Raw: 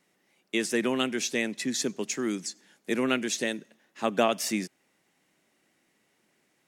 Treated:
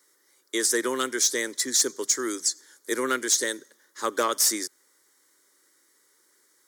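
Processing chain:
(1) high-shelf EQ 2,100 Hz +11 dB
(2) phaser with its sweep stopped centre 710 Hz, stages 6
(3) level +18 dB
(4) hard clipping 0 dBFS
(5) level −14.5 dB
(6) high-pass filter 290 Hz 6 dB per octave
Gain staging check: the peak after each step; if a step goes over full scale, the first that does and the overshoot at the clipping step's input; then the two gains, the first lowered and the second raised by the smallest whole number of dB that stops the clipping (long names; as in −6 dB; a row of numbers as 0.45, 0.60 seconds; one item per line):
−5.5, −9.0, +9.0, 0.0, −14.5, −13.0 dBFS
step 3, 9.0 dB
step 3 +9 dB, step 5 −5.5 dB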